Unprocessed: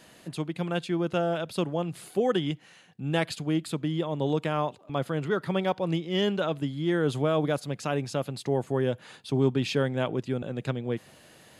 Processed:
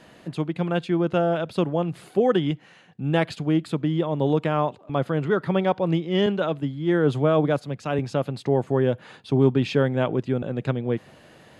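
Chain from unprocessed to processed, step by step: LPF 2100 Hz 6 dB/oct; 6.26–7.99 three-band expander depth 70%; gain +5.5 dB

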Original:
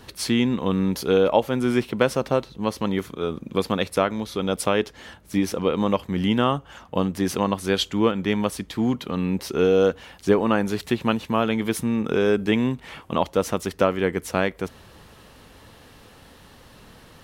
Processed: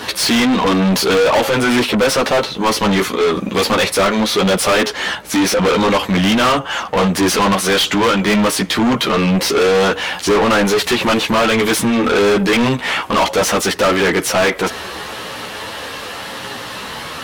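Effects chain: chorus voices 6, 0.46 Hz, delay 13 ms, depth 3.9 ms; overdrive pedal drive 35 dB, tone 5400 Hz, clips at -6 dBFS

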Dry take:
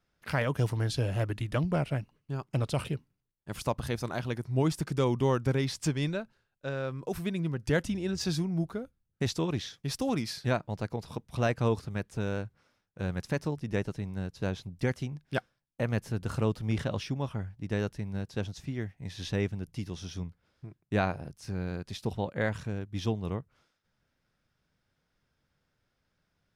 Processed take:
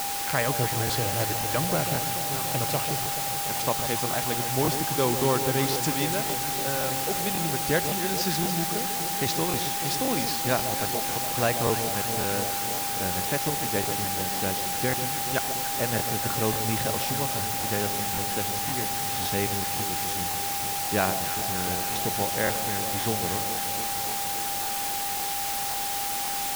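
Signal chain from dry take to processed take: low shelf 240 Hz -9 dB; whine 800 Hz -36 dBFS; requantised 6-bit, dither triangular; echo with dull and thin repeats by turns 0.144 s, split 930 Hz, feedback 86%, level -9 dB; crackling interface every 0.54 s, samples 1024, repeat, from 0.85; gain +4.5 dB

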